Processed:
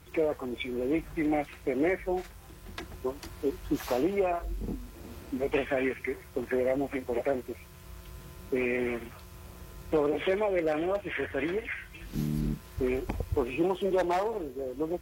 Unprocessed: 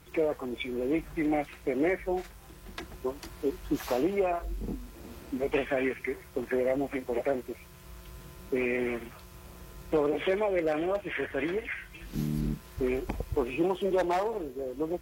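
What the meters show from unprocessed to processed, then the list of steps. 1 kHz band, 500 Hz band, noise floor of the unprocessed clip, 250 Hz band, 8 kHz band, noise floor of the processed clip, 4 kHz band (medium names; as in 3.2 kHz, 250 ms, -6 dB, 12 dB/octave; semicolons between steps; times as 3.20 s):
0.0 dB, 0.0 dB, -51 dBFS, 0.0 dB, 0.0 dB, -50 dBFS, 0.0 dB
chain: peaking EQ 86 Hz +7.5 dB 0.37 oct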